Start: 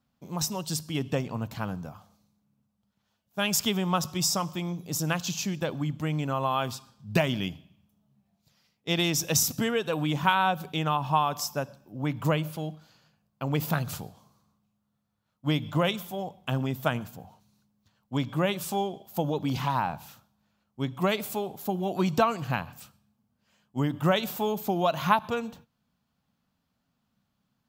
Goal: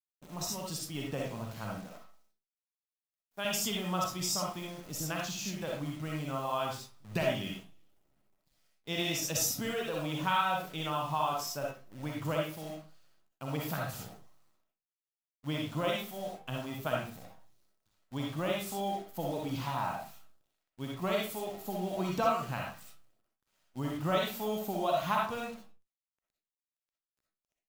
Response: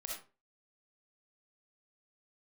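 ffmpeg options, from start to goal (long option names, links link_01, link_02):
-filter_complex "[0:a]asettb=1/sr,asplit=3[link_01][link_02][link_03];[link_01]atrim=end=1.784[link_04];[link_02]atrim=start=1.78:end=3.45,asetpts=PTS-STARTPTS,afade=type=in:duration=0.004:curve=qsin,afade=type=out:start_time=1.666:duration=0.004:curve=qsin,highpass=250[link_05];[link_03]atrim=start=3.446[link_06];[link_04][link_05]acrossfade=duration=0.004:curve1=hsin:curve2=qsin[link_07];[link_07][link_06]acrossfade=duration=0.004:curve1=qsin:curve2=hsin,acrusher=bits=8:dc=4:mix=0:aa=0.000001[link_08];[1:a]atrim=start_sample=2205,afade=type=out:start_time=0.28:duration=0.01,atrim=end_sample=12789[link_09];[link_08][link_09]afir=irnorm=-1:irlink=0,volume=-4dB"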